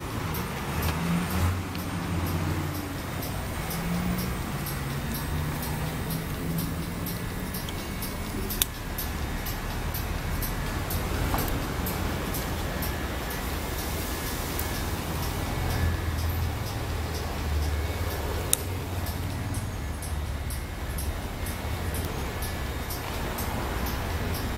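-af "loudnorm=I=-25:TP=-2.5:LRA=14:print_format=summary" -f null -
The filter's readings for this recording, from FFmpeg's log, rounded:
Input Integrated:    -30.7 LUFS
Input True Peak:      -2.3 dBTP
Input LRA:             1.9 LU
Input Threshold:     -40.7 LUFS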